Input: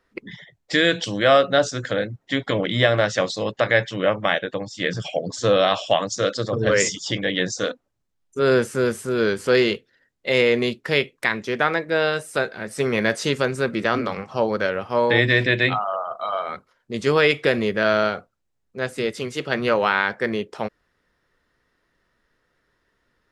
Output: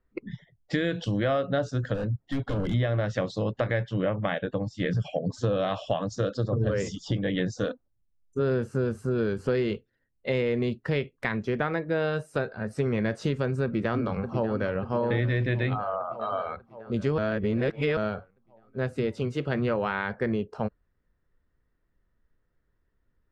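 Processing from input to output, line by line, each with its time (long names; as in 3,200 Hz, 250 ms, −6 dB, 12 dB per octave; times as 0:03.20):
0:01.94–0:02.74: gain into a clipping stage and back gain 25 dB
0:06.25–0:07.26: parametric band 2,100 Hz −6 dB 0.49 octaves
0:13.64–0:14.76: delay throw 590 ms, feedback 65%, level −10 dB
0:17.18–0:17.97: reverse
whole clip: RIAA equalisation playback; noise reduction from a noise print of the clip's start 9 dB; downward compressor 4 to 1, threshold −19 dBFS; level −4.5 dB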